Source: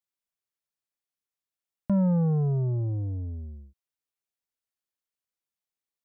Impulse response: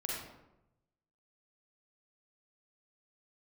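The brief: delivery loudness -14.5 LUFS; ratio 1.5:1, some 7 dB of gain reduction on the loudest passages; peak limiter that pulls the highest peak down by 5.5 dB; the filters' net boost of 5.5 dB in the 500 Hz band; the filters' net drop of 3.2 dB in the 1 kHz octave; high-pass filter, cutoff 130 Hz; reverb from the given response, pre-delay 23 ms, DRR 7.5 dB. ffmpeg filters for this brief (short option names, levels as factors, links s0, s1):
-filter_complex "[0:a]highpass=130,equalizer=f=500:t=o:g=8,equalizer=f=1000:t=o:g=-7.5,acompressor=threshold=0.0112:ratio=1.5,alimiter=level_in=1.33:limit=0.0631:level=0:latency=1,volume=0.75,asplit=2[s0][s1];[1:a]atrim=start_sample=2205,adelay=23[s2];[s1][s2]afir=irnorm=-1:irlink=0,volume=0.316[s3];[s0][s3]amix=inputs=2:normalize=0,volume=10.6"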